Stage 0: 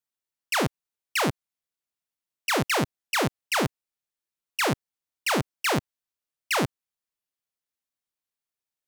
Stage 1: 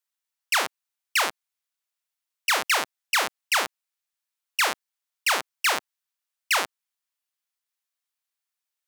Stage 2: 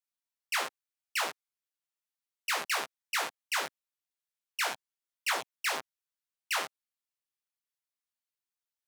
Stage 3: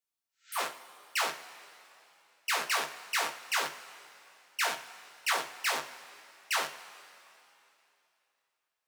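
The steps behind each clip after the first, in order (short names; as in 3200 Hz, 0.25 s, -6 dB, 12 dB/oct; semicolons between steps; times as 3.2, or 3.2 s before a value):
HPF 870 Hz 12 dB/oct; gain +4 dB
chorus voices 4, 0.71 Hz, delay 16 ms, depth 3.9 ms; gain -5.5 dB
spectral repair 0.31–0.57, 1300–8100 Hz both; two-slope reverb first 0.32 s, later 3 s, from -17 dB, DRR 4.5 dB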